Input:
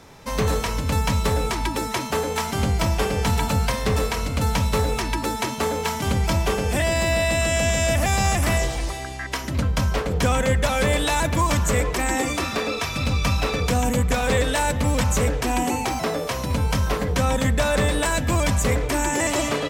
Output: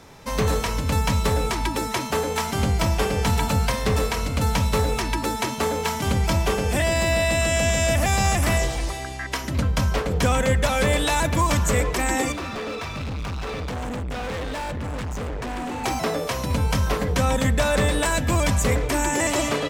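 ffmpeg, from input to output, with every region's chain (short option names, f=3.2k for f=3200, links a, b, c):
-filter_complex "[0:a]asettb=1/sr,asplit=3[a][b][c];[a]atrim=end=12.324[d];[b]atrim=start=12.32:end=15.84,asetpts=PTS-STARTPTS,afade=t=in:d=0.004:c=qsin,afade=t=out:st=3.516:d=0.004:c=qsin,aemphasis=mode=reproduction:type=75kf,asoftclip=type=hard:threshold=-27.5dB[e];[c]atrim=start=15.836[f];[d][e]acrossfade=d=0.004:c1=hsin:c2=qsin[g];[g][f]acrossfade=d=0.004:c1=qsin:c2=hsin"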